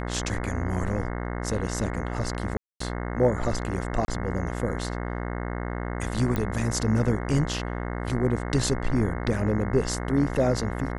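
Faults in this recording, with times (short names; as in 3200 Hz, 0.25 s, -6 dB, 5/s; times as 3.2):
buzz 60 Hz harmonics 36 -31 dBFS
2.57–2.8 gap 0.234 s
4.05–4.08 gap 30 ms
6.36 pop -14 dBFS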